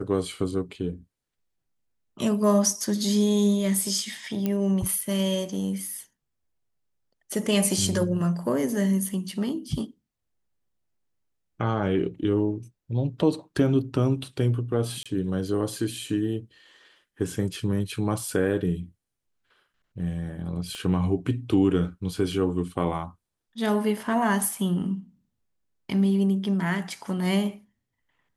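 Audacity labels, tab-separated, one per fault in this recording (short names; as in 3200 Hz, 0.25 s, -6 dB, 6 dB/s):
4.460000	4.460000	pop -14 dBFS
15.030000	15.060000	gap 26 ms
20.750000	20.750000	pop -24 dBFS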